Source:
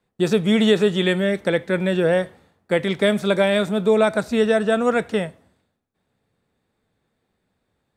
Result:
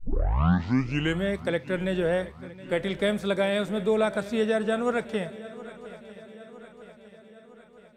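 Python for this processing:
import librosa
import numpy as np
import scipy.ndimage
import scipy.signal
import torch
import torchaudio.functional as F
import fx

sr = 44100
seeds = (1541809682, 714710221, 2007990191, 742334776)

y = fx.tape_start_head(x, sr, length_s=1.23)
y = fx.echo_swing(y, sr, ms=959, ratio=3, feedback_pct=55, wet_db=-18)
y = F.gain(torch.from_numpy(y), -7.0).numpy()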